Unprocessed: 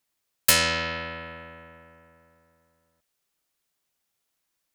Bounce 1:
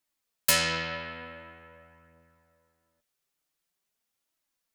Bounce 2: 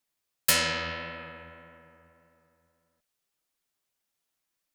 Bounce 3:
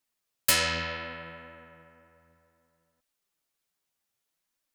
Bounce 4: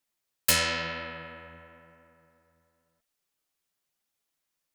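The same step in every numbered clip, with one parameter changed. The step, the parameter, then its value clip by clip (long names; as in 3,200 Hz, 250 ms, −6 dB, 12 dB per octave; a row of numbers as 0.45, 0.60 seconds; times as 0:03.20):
flanger, speed: 0.23, 1.7, 0.65, 0.97 Hertz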